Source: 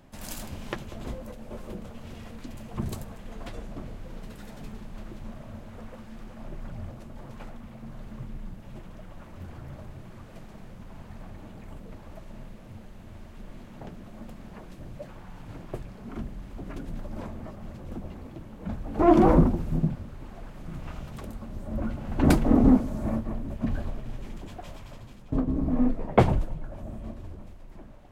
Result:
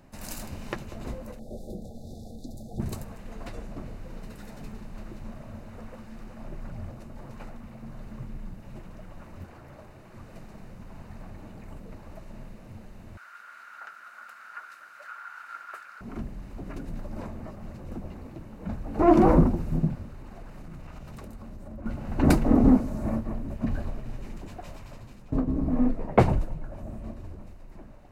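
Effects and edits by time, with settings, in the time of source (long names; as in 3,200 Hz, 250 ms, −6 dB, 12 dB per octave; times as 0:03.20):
0:01.39–0:02.80: linear-phase brick-wall band-stop 840–3,400 Hz
0:09.44–0:10.14: bass and treble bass −9 dB, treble −2 dB
0:13.17–0:16.01: high-pass with resonance 1,400 Hz, resonance Q 14
0:20.07–0:21.86: downward compressor, threshold −37 dBFS
whole clip: notch filter 3,300 Hz, Q 6.5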